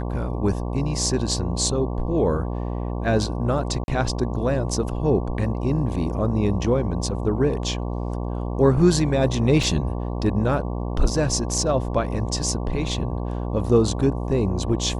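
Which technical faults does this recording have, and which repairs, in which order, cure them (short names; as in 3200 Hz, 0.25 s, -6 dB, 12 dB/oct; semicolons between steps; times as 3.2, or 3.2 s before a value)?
buzz 60 Hz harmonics 19 -27 dBFS
3.84–3.88 gap 41 ms
9.63 gap 2.9 ms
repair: de-hum 60 Hz, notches 19; interpolate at 3.84, 41 ms; interpolate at 9.63, 2.9 ms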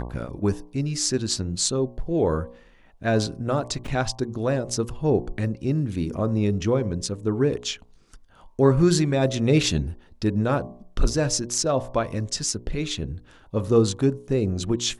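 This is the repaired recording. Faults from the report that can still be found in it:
none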